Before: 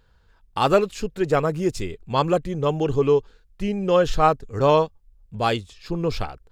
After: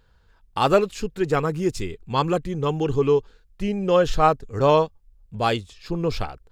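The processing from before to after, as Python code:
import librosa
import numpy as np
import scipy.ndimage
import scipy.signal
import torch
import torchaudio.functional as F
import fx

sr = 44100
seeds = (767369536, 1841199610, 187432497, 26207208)

y = fx.peak_eq(x, sr, hz=610.0, db=-10.0, octaves=0.26, at=(1.0, 3.18))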